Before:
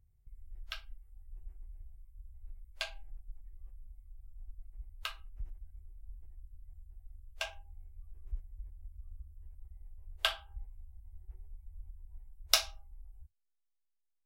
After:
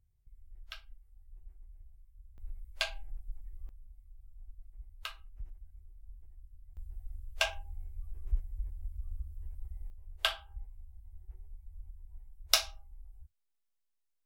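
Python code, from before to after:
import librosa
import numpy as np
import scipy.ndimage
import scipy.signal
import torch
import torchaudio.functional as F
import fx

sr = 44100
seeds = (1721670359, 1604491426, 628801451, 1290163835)

y = fx.gain(x, sr, db=fx.steps((0.0, -4.0), (2.38, 5.0), (3.69, -2.0), (6.77, 8.0), (9.9, 0.5)))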